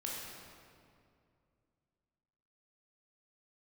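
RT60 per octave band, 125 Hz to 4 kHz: 3.1, 2.9, 2.5, 2.2, 1.9, 1.5 s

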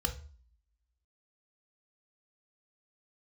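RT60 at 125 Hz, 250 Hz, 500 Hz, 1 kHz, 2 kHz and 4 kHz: 0.50, 0.55, 0.40, 0.45, 0.40, 0.40 s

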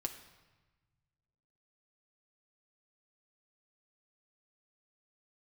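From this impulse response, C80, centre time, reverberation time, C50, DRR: 12.0 dB, 17 ms, 1.2 s, 10.0 dB, 2.5 dB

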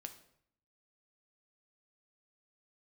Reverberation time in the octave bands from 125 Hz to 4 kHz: 0.90, 0.80, 0.65, 0.65, 0.60, 0.55 s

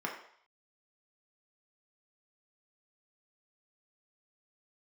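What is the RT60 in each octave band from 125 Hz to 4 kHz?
0.35, 0.40, 0.55, 0.65, 0.60, 0.60 s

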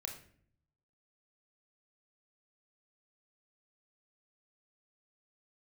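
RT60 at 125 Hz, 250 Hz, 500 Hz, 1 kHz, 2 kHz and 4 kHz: 1.1, 0.90, 0.65, 0.50, 0.50, 0.40 s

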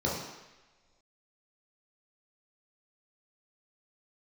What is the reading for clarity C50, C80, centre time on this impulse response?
2.0 dB, 5.0 dB, 58 ms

